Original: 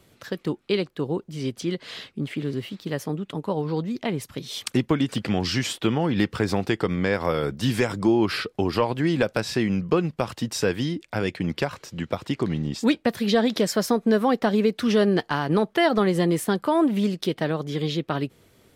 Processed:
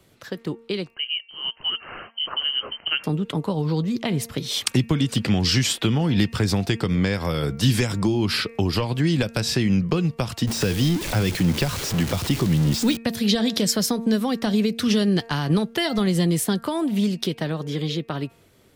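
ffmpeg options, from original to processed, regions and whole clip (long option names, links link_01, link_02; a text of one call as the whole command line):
ffmpeg -i in.wav -filter_complex "[0:a]asettb=1/sr,asplit=3[link_01][link_02][link_03];[link_01]atrim=end=0.944[link_04];[link_02]atrim=start=0.94:end=3.04,asetpts=PTS-STARTPTS,afade=type=in:duration=0.004:curve=qsin,afade=type=out:start_time=2.096:duration=0.004:curve=qsin,highpass=290,lowpass=frequency=2800:width_type=q:width=0.5098,lowpass=frequency=2800:width_type=q:width=0.6013,lowpass=frequency=2800:width_type=q:width=0.9,lowpass=frequency=2800:width_type=q:width=2.563,afreqshift=-3300[link_05];[link_03]atrim=start=3.036[link_06];[link_04][link_05]acrossfade=duration=0.004:curve1=hsin:curve2=qsin[link_07];[link_07][link_06]acrossfade=duration=0.004:curve1=qsin:curve2=hsin,asettb=1/sr,asplit=3[link_08][link_09][link_10];[link_08]atrim=end=10.474[link_11];[link_09]atrim=start=10.47:end=12.97,asetpts=PTS-STARTPTS,afade=type=in:duration=0.004:curve=qsin,afade=type=out:start_time=2.496:duration=0.004:curve=qsin,aeval=exprs='val(0)+0.5*0.0376*sgn(val(0))':channel_layout=same,deesser=0.6[link_12];[link_10]atrim=start=12.966[link_13];[link_11][link_12]acrossfade=duration=0.004:curve1=hsin:curve2=qsin[link_14];[link_14][link_13]acrossfade=duration=0.004:curve1=qsin:curve2=hsin,dynaudnorm=framelen=460:gausssize=9:maxgain=11.5dB,bandreject=frequency=229.7:width_type=h:width=4,bandreject=frequency=459.4:width_type=h:width=4,bandreject=frequency=689.1:width_type=h:width=4,bandreject=frequency=918.8:width_type=h:width=4,bandreject=frequency=1148.5:width_type=h:width=4,bandreject=frequency=1378.2:width_type=h:width=4,bandreject=frequency=1607.9:width_type=h:width=4,bandreject=frequency=1837.6:width_type=h:width=4,bandreject=frequency=2067.3:width_type=h:width=4,bandreject=frequency=2297:width_type=h:width=4,bandreject=frequency=2526.7:width_type=h:width=4,bandreject=frequency=2756.4:width_type=h:width=4,acrossover=split=190|3000[link_15][link_16][link_17];[link_16]acompressor=threshold=-26dB:ratio=5[link_18];[link_15][link_18][link_17]amix=inputs=3:normalize=0" out.wav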